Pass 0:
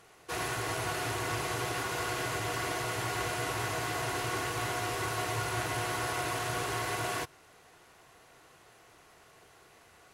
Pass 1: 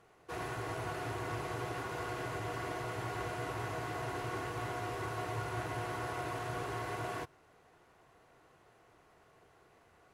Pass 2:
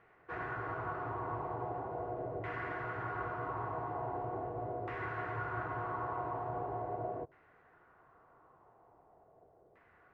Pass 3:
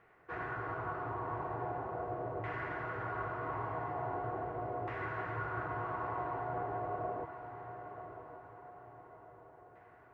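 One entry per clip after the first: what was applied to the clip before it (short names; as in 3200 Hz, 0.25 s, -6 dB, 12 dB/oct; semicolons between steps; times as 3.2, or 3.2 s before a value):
high shelf 2200 Hz -12 dB; gain -3 dB
LFO low-pass saw down 0.41 Hz 570–2000 Hz; gain -3 dB
diffused feedback echo 1.054 s, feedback 46%, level -9.5 dB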